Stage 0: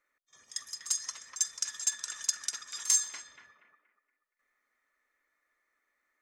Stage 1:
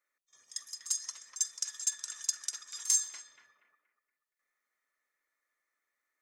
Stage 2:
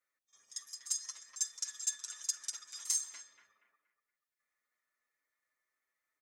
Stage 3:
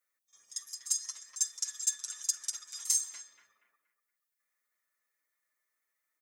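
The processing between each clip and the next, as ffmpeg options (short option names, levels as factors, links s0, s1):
-af "bass=f=250:g=-7,treble=f=4000:g=6,volume=0.447"
-filter_complex "[0:a]asplit=2[s0][s1];[s1]adelay=7.4,afreqshift=0.33[s2];[s0][s2]amix=inputs=2:normalize=1"
-af "crystalizer=i=1:c=0"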